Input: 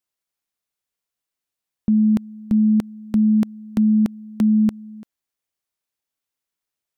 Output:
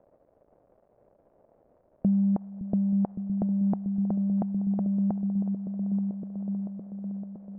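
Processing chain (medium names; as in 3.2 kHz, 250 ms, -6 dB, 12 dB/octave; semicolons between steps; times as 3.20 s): bass shelf 200 Hz -10.5 dB; peak limiter -23.5 dBFS, peak gain reduction 9.5 dB; transient shaper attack +3 dB, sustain -3 dB; crackle 480 per s -46 dBFS; distance through air 490 m; delay with an opening low-pass 517 ms, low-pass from 200 Hz, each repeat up 1 oct, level -6 dB; speed mistake 48 kHz file played as 44.1 kHz; touch-sensitive low-pass 590–1200 Hz up, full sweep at -16.5 dBFS; trim +3.5 dB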